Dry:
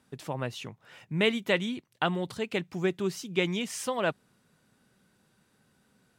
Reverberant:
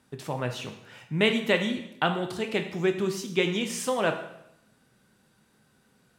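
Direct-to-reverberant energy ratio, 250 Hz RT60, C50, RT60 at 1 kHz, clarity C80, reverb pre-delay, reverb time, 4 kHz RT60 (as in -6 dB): 5.5 dB, 0.80 s, 9.5 dB, 0.75 s, 11.5 dB, 5 ms, 0.80 s, 0.75 s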